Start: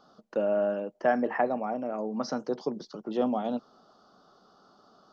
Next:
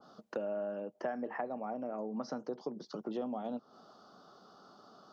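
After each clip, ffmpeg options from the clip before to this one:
-af "highpass=74,acompressor=threshold=0.0126:ratio=4,adynamicequalizer=threshold=0.00158:dfrequency=1600:dqfactor=0.7:tfrequency=1600:tqfactor=0.7:attack=5:release=100:ratio=0.375:range=2.5:mode=cutabove:tftype=highshelf,volume=1.19"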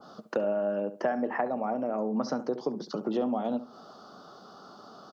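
-filter_complex "[0:a]asplit=2[s0][s1];[s1]adelay=69,lowpass=f=2100:p=1,volume=0.224,asplit=2[s2][s3];[s3]adelay=69,lowpass=f=2100:p=1,volume=0.25,asplit=2[s4][s5];[s5]adelay=69,lowpass=f=2100:p=1,volume=0.25[s6];[s0][s2][s4][s6]amix=inputs=4:normalize=0,volume=2.66"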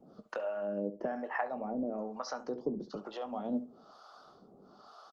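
-filter_complex "[0:a]acrossover=split=590[s0][s1];[s0]aeval=exprs='val(0)*(1-1/2+1/2*cos(2*PI*1.1*n/s))':c=same[s2];[s1]aeval=exprs='val(0)*(1-1/2-1/2*cos(2*PI*1.1*n/s))':c=same[s3];[s2][s3]amix=inputs=2:normalize=0,asplit=2[s4][s5];[s5]adelay=20,volume=0.251[s6];[s4][s6]amix=inputs=2:normalize=0,volume=0.841" -ar 48000 -c:a libopus -b:a 24k

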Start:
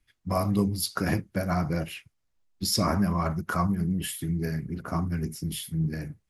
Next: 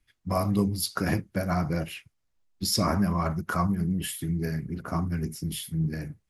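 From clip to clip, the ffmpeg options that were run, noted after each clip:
-af anull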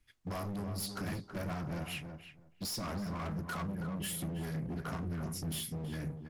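-filter_complex "[0:a]acompressor=threshold=0.0282:ratio=6,asoftclip=type=hard:threshold=0.0158,asplit=2[s0][s1];[s1]adelay=325,lowpass=f=1700:p=1,volume=0.447,asplit=2[s2][s3];[s3]adelay=325,lowpass=f=1700:p=1,volume=0.16,asplit=2[s4][s5];[s5]adelay=325,lowpass=f=1700:p=1,volume=0.16[s6];[s0][s2][s4][s6]amix=inputs=4:normalize=0"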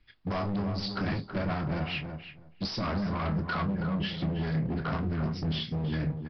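-filter_complex "[0:a]asplit=2[s0][s1];[s1]adelay=26,volume=0.282[s2];[s0][s2]amix=inputs=2:normalize=0,aresample=11025,aresample=44100,volume=2.37"

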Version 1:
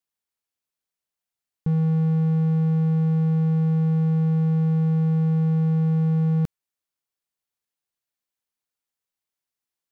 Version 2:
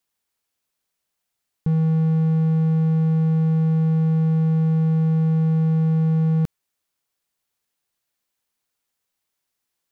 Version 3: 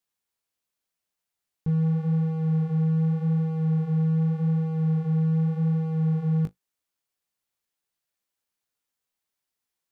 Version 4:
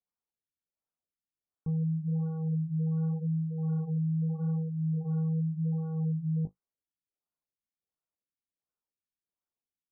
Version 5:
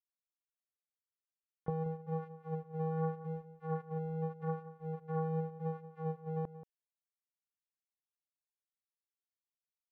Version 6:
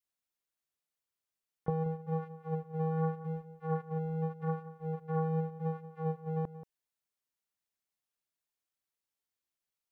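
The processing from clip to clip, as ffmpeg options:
-af "alimiter=limit=0.0794:level=0:latency=1,volume=2.66"
-af "flanger=delay=9.9:depth=9.6:regen=-28:speed=0.85:shape=sinusoidal,volume=0.794"
-af "afftfilt=real='re*lt(b*sr/1024,310*pow(1600/310,0.5+0.5*sin(2*PI*1.4*pts/sr)))':imag='im*lt(b*sr/1024,310*pow(1600/310,0.5+0.5*sin(2*PI*1.4*pts/sr)))':win_size=1024:overlap=0.75,volume=0.473"
-filter_complex "[0:a]acrusher=bits=3:mix=0:aa=0.5,asplit=2[s0][s1];[s1]adelay=180.8,volume=0.2,highshelf=f=4000:g=-4.07[s2];[s0][s2]amix=inputs=2:normalize=0,volume=1.41"
-af "adynamicequalizer=threshold=0.00355:dfrequency=560:dqfactor=1.1:tfrequency=560:tqfactor=1.1:attack=5:release=100:ratio=0.375:range=2:mode=cutabove:tftype=bell,volume=1.58"

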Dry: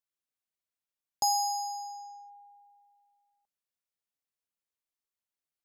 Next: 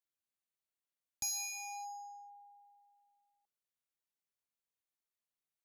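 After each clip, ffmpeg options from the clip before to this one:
-filter_complex "[0:a]bandreject=f=5100:w=12,acrossover=split=330|2500[s0][s1][s2];[s1]aeval=exprs='0.0126*(abs(mod(val(0)/0.0126+3,4)-2)-1)':c=same[s3];[s0][s3][s2]amix=inputs=3:normalize=0,volume=0.631"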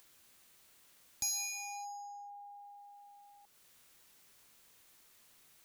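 -af "equalizer=f=690:t=o:w=0.77:g=-2.5,acompressor=mode=upward:threshold=0.00562:ratio=2.5,volume=1.26"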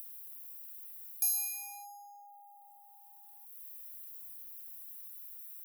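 -af "aexciter=amount=13.5:drive=4.5:freq=10000,volume=0.531"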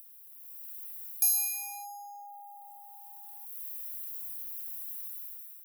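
-af "dynaudnorm=f=170:g=7:m=4.47,volume=0.562"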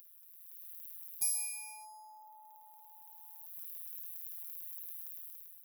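-af "afftfilt=real='hypot(re,im)*cos(PI*b)':imag='0':win_size=1024:overlap=0.75,volume=0.794"

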